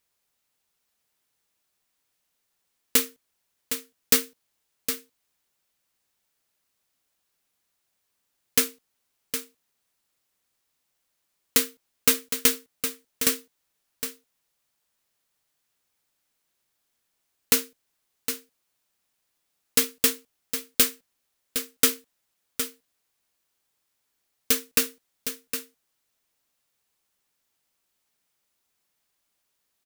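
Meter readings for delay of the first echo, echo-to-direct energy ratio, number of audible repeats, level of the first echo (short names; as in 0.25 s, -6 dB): 0.762 s, -9.0 dB, 1, -9.0 dB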